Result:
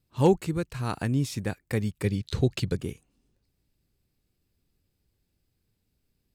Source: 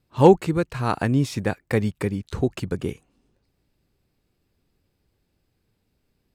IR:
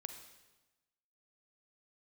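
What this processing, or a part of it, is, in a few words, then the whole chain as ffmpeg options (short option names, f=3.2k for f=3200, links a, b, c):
smiley-face EQ: -filter_complex "[0:a]lowshelf=f=140:g=4,equalizer=f=820:t=o:w=2.3:g=-4,highshelf=f=5.1k:g=7,asettb=1/sr,asplit=3[a][b][c];[a]atrim=end=2.044[d];[b]atrim=start=2.04:end=2.77,asetpts=PTS-STARTPTS,afade=t=in:d=0.004:c=qsin,afade=t=out:st=0.726:d=0.004:c=qsin,equalizer=f=125:t=o:w=1:g=7,equalizer=f=500:t=o:w=1:g=6,equalizer=f=2k:t=o:w=1:g=4,equalizer=f=4k:t=o:w=1:g=11[e];[c]atrim=start=2.766[f];[d][e]acrossfade=d=0.004:c1=hsin:c2=qsin[g];[g][f]acrossfade=d=0.004:c1=qsin:c2=hsin,volume=-6dB"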